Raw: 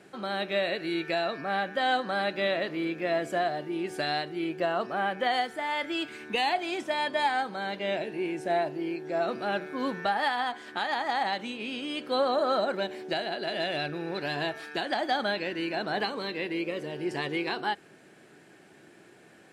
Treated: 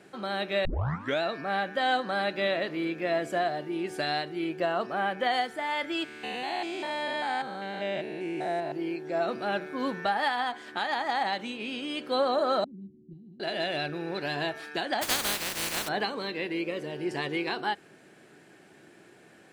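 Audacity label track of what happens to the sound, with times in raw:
0.650000	0.650000	tape start 0.57 s
6.040000	8.720000	stepped spectrum every 0.2 s
12.640000	13.400000	inverse Chebyshev low-pass stop band from 580 Hz, stop band 50 dB
15.010000	15.870000	spectral contrast lowered exponent 0.19

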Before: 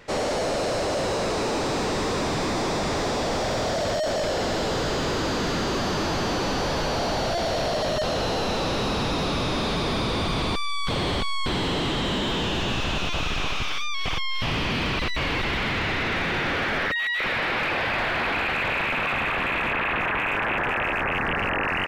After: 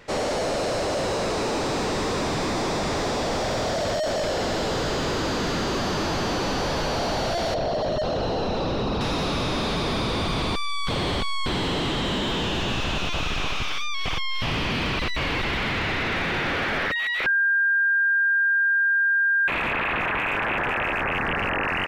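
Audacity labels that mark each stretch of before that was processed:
7.540000	9.010000	formant sharpening exponent 1.5
17.260000	19.480000	bleep 1600 Hz -17.5 dBFS

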